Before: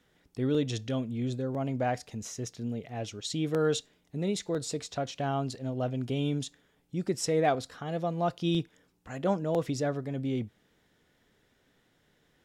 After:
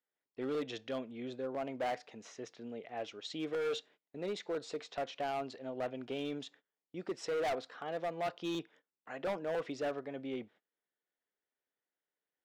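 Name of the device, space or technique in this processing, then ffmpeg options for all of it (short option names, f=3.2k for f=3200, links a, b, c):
walkie-talkie: -af "highpass=420,lowpass=3k,asoftclip=type=hard:threshold=-30.5dB,agate=range=-23dB:threshold=-59dB:ratio=16:detection=peak,volume=-1dB"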